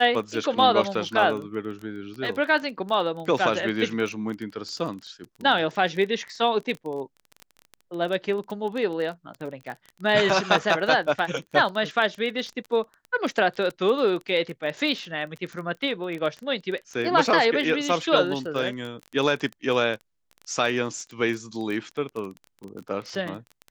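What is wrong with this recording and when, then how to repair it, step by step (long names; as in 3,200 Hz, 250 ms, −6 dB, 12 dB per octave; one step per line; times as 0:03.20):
surface crackle 21 per second −30 dBFS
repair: click removal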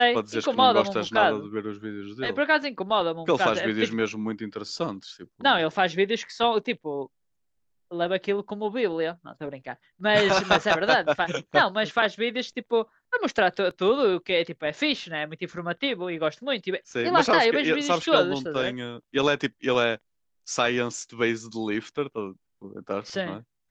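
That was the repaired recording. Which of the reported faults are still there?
none of them is left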